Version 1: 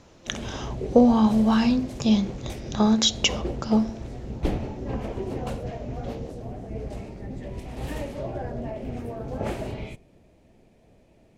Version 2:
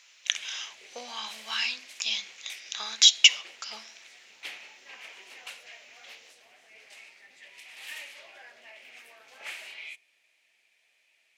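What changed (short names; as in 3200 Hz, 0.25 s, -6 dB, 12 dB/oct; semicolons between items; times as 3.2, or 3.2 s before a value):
speech: add high shelf 6100 Hz +7 dB; master: add resonant high-pass 2300 Hz, resonance Q 2.1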